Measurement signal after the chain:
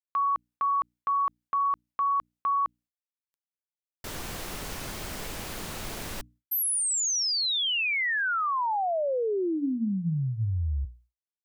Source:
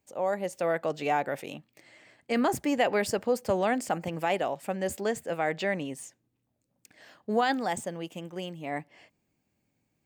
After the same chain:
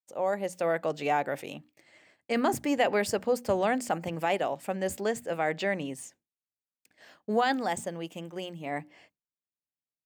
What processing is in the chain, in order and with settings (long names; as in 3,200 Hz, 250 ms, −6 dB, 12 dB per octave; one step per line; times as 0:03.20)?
mains-hum notches 60/120/180/240/300 Hz
downward expander −52 dBFS